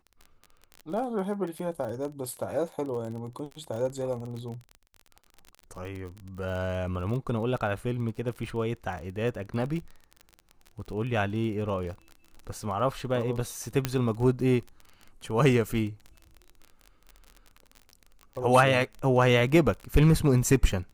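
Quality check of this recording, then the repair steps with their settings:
crackle 30 per s -35 dBFS
13.85 s: pop -10 dBFS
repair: de-click

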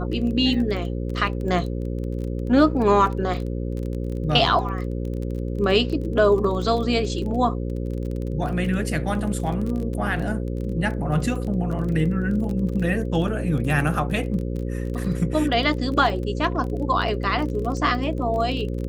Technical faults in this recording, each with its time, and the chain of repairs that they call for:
buzz 60 Hz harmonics 9 -27 dBFS
crackle 21 per s -29 dBFS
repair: de-click; de-hum 60 Hz, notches 9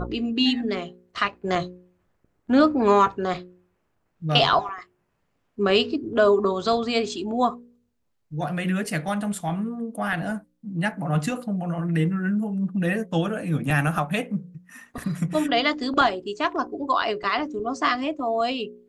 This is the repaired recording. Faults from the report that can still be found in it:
nothing left

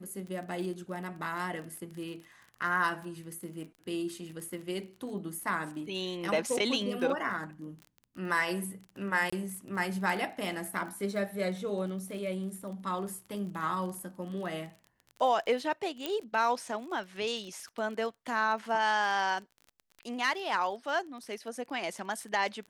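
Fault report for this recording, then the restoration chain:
crackle 28 per s -39 dBFS
9.30–9.32 s: dropout 25 ms
16.06 s: pop -17 dBFS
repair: de-click; interpolate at 9.30 s, 25 ms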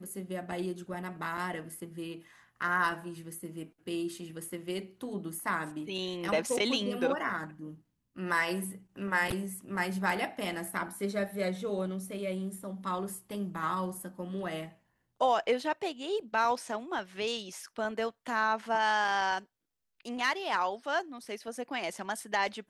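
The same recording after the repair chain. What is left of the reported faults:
16.06 s: pop

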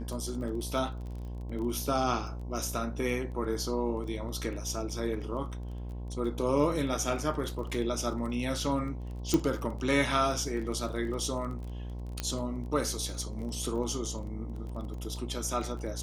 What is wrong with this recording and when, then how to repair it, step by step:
buzz 60 Hz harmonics 18 -38 dBFS
crackle 22 per s -38 dBFS
9.34 s: pop -13 dBFS
12.20 s: pop -17 dBFS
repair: de-click; de-hum 60 Hz, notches 18

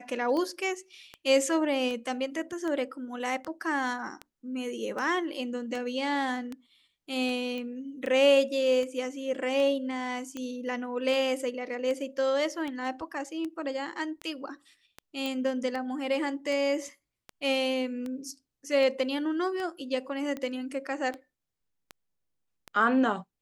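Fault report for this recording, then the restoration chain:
tick 78 rpm -23 dBFS
7.58 s: pop -25 dBFS
15.26 s: pop -19 dBFS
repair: de-click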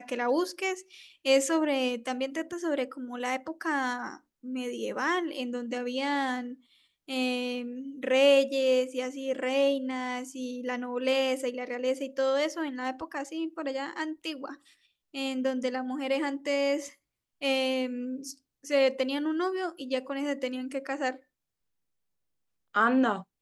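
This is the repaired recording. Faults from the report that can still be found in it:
15.26 s: pop

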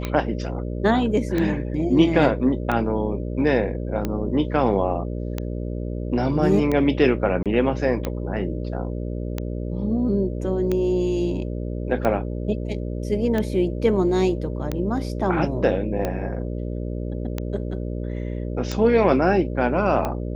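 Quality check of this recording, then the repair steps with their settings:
buzz 60 Hz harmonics 10 -28 dBFS
tick 45 rpm -12 dBFS
7.43–7.46 s: dropout 27 ms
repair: de-click; de-hum 60 Hz, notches 10; interpolate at 7.43 s, 27 ms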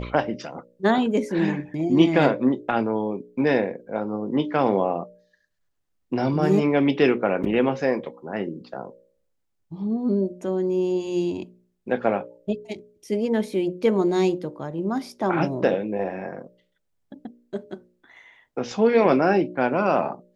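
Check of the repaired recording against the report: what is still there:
nothing left

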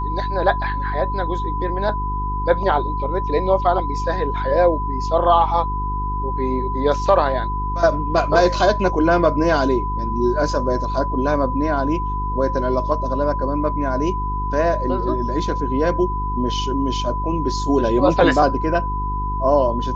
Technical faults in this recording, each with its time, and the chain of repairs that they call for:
hum 50 Hz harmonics 8 -25 dBFS
whine 1 kHz -24 dBFS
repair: de-hum 50 Hz, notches 8; band-stop 1 kHz, Q 30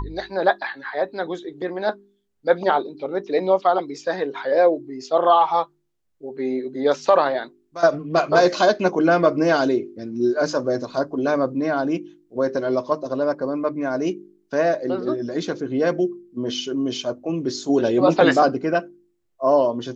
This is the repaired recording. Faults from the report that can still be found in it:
nothing left

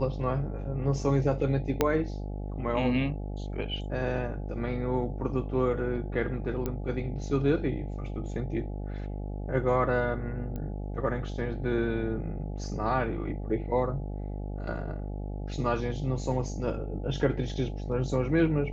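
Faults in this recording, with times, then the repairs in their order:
buzz 50 Hz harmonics 17 -35 dBFS
1.81 s: pop -9 dBFS
6.66 s: pop -18 dBFS
10.56 s: pop -25 dBFS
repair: de-click; de-hum 50 Hz, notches 17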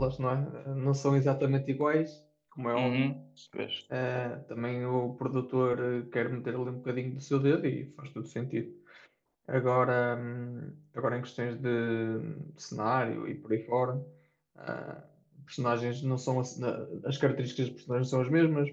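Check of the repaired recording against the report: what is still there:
1.81 s: pop

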